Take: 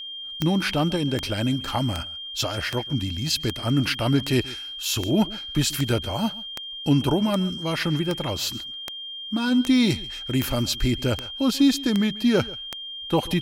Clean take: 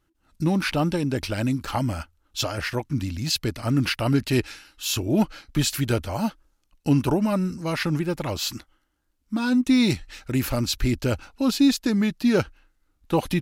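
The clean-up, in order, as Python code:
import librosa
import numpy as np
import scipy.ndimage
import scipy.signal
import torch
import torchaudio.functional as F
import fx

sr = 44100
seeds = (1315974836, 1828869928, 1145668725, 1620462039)

y = fx.fix_declick_ar(x, sr, threshold=10.0)
y = fx.notch(y, sr, hz=3200.0, q=30.0)
y = fx.fix_echo_inverse(y, sr, delay_ms=137, level_db=-20.0)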